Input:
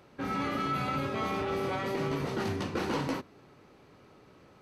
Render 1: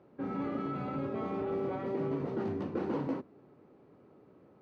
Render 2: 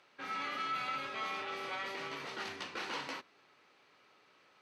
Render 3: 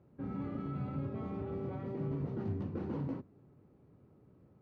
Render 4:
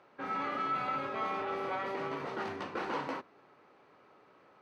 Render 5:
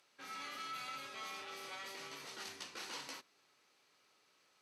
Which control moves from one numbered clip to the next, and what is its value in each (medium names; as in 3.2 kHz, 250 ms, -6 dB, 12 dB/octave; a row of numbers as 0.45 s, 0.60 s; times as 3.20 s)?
band-pass filter, frequency: 310 Hz, 2.9 kHz, 110 Hz, 1.1 kHz, 7.4 kHz